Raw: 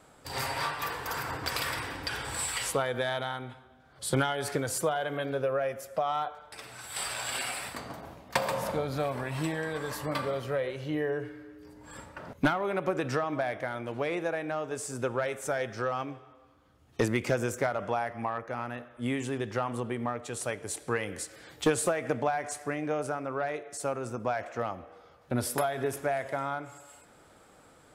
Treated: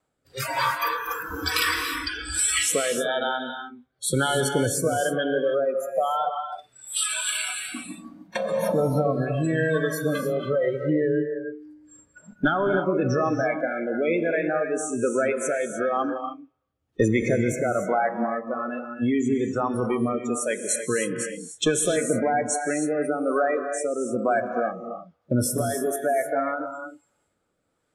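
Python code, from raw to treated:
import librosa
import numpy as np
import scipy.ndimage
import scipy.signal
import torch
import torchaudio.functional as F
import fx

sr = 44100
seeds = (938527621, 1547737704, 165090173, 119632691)

p1 = fx.over_compress(x, sr, threshold_db=-32.0, ratio=-0.5)
p2 = x + F.gain(torch.from_numpy(p1), -2.5).numpy()
p3 = fx.noise_reduce_blind(p2, sr, reduce_db=27)
p4 = fx.rotary(p3, sr, hz=1.1)
p5 = fx.rev_gated(p4, sr, seeds[0], gate_ms=330, shape='rising', drr_db=5.5)
y = F.gain(torch.from_numpy(p5), 6.0).numpy()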